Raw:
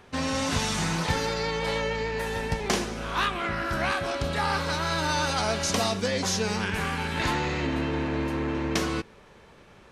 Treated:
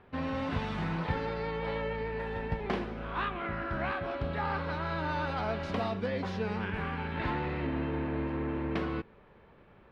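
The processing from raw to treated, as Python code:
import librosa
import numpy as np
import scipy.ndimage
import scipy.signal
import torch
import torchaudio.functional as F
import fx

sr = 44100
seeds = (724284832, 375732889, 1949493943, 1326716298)

y = fx.air_absorb(x, sr, metres=440.0)
y = y * librosa.db_to_amplitude(-4.0)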